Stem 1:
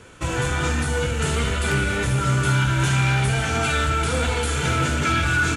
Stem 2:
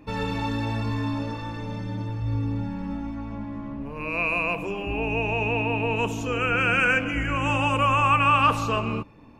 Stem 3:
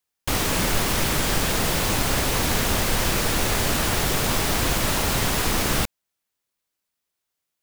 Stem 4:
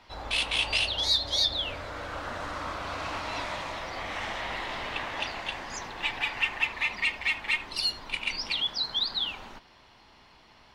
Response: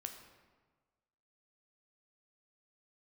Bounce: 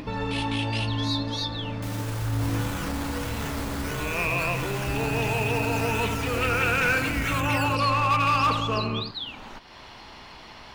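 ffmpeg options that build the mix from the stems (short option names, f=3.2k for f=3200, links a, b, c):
-filter_complex "[0:a]acrusher=samples=12:mix=1:aa=0.000001:lfo=1:lforange=7.2:lforate=1.5,asoftclip=type=hard:threshold=-20.5dB,adelay=2200,volume=-9.5dB[a];[1:a]lowpass=f=3.8k:p=1,asoftclip=type=hard:threshold=-16.5dB,volume=-1.5dB,asplit=2[b][c];[c]volume=-8dB[d];[2:a]alimiter=limit=-21dB:level=0:latency=1,adelay=1550,volume=-9dB[e];[3:a]volume=-6.5dB[f];[d]aecho=0:1:83:1[g];[a][b][e][f][g]amix=inputs=5:normalize=0,acompressor=mode=upward:threshold=-28dB:ratio=2.5"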